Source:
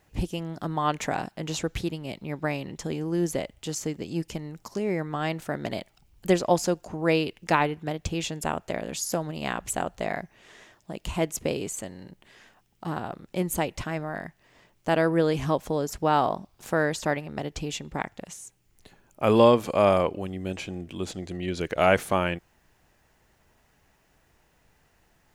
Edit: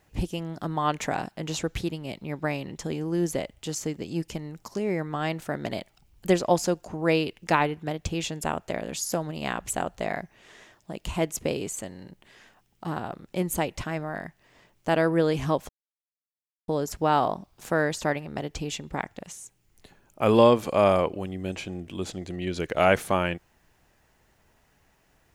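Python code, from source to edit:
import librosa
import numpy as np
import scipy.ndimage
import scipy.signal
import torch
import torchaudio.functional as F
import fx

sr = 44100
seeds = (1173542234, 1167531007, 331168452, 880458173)

y = fx.edit(x, sr, fx.insert_silence(at_s=15.69, length_s=0.99), tone=tone)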